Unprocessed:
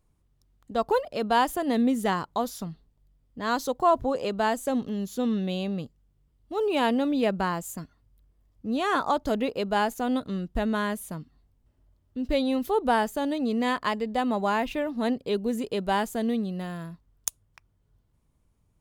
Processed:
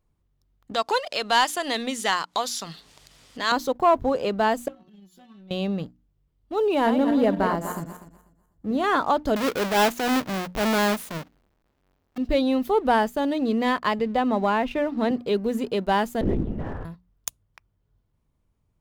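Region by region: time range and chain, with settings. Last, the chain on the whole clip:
0.74–3.52 s: frequency weighting ITU-R 468 + upward compressor, threshold -26 dBFS
4.68–5.51 s: peaking EQ 490 Hz -13 dB 0.2 oct + inharmonic resonator 180 Hz, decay 0.25 s, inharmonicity 0.002 + compression 4:1, threshold -47 dBFS
6.74–8.84 s: backward echo that repeats 123 ms, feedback 51%, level -7 dB + peaking EQ 3.6 kHz -6 dB 1.5 oct + band-stop 2.5 kHz, Q 7.8
9.36–12.18 s: square wave that keeps the level + bass shelf 170 Hz -10.5 dB + transient shaper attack -8 dB, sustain +2 dB
13.99–15.11 s: low-pass 3.6 kHz 6 dB/octave + three bands compressed up and down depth 40%
16.21–16.85 s: low-pass 1.7 kHz + hum notches 50/100/150/200/250/300/350/400 Hz + LPC vocoder at 8 kHz whisper
whole clip: peaking EQ 9.3 kHz -6.5 dB 1.3 oct; hum notches 60/120/180/240/300 Hz; waveshaping leveller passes 1

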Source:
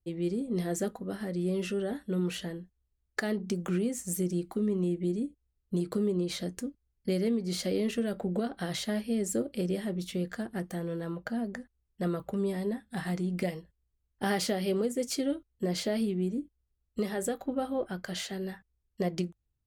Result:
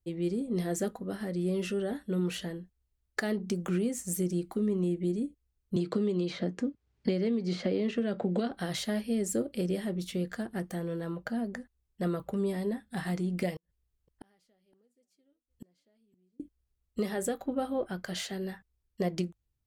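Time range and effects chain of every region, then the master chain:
5.76–8.51 s: high-pass 110 Hz + distance through air 130 m + three bands compressed up and down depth 100%
13.56–16.40 s: inverted gate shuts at -33 dBFS, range -41 dB + delay 516 ms -23 dB
whole clip: none

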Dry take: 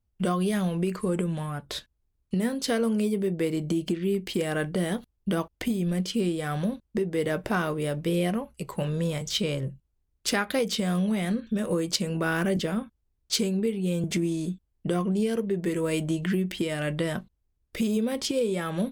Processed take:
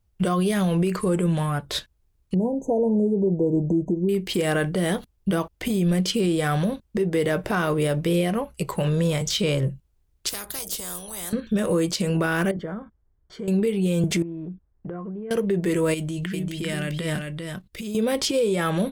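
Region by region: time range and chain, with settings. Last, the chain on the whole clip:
2.34–4.09 s: brick-wall FIR band-stop 1–6.1 kHz + distance through air 250 m
10.29–11.33 s: FFT filter 260 Hz 0 dB, 2.3 kHz -25 dB, 9.7 kHz +4 dB + spectrum-flattening compressor 4:1
12.51–13.48 s: compression 2:1, threshold -43 dBFS + Savitzky-Golay filter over 41 samples
14.22–15.31 s: low-pass 1.7 kHz 24 dB/octave + compression 5:1, threshold -39 dBFS
15.94–17.95 s: peaking EQ 710 Hz -6.5 dB 2.1 oct + level held to a coarse grid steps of 12 dB + delay 395 ms -4 dB
whole clip: peaking EQ 240 Hz -8 dB 0.25 oct; peak limiter -22.5 dBFS; trim +8 dB

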